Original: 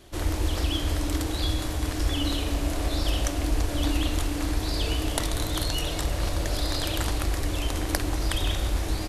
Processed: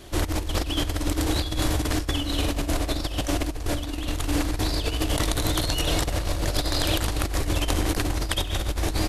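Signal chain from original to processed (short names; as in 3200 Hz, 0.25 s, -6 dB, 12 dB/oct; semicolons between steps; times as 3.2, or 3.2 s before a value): negative-ratio compressor -28 dBFS, ratio -0.5; gain +4 dB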